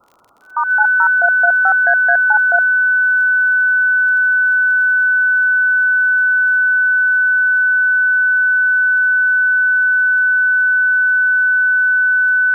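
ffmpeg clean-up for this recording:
-af "adeclick=t=4,bandreject=f=1500:w=30,afftdn=nr=30:nf=-20"

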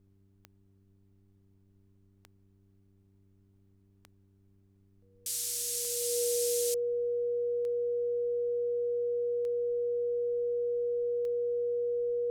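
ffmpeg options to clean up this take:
-af "adeclick=t=4,bandreject=f=97.7:t=h:w=4,bandreject=f=195.4:t=h:w=4,bandreject=f=293.1:t=h:w=4,bandreject=f=390.8:t=h:w=4,bandreject=f=480:w=30,agate=range=0.0891:threshold=0.00141"

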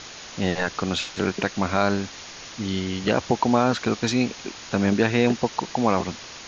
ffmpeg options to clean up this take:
-af "afwtdn=0.018"

